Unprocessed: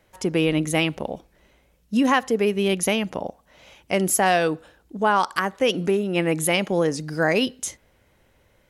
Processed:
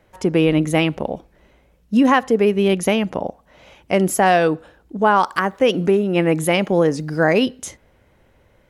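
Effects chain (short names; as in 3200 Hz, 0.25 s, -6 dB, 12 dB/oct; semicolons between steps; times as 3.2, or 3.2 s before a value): high shelf 2700 Hz -9 dB; 5.02–7.39 requantised 12-bit, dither none; gain +5.5 dB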